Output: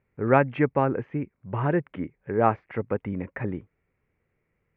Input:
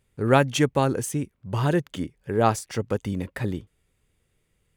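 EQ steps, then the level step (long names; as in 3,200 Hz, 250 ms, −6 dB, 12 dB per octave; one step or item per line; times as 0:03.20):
elliptic low-pass filter 2,300 Hz, stop band 80 dB
low-shelf EQ 68 Hz −11 dB
0.0 dB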